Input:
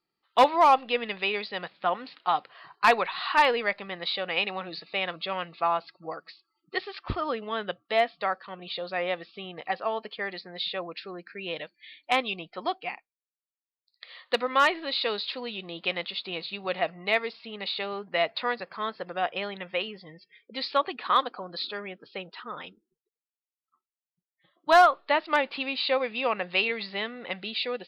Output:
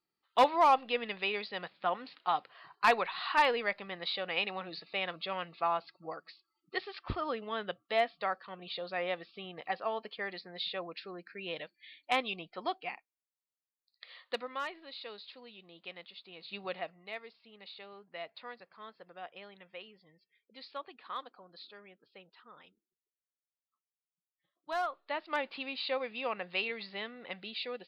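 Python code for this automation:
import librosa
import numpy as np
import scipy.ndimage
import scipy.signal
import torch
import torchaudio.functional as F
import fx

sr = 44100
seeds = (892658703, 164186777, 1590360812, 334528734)

y = fx.gain(x, sr, db=fx.line((14.13, -5.5), (14.65, -17.0), (16.37, -17.0), (16.57, -5.0), (17.03, -17.5), (24.73, -17.5), (25.44, -8.5)))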